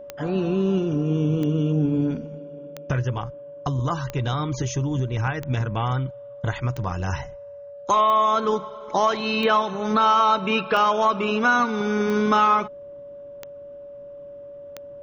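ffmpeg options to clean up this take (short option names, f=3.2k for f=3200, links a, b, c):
-af "adeclick=t=4,bandreject=f=570:w=30"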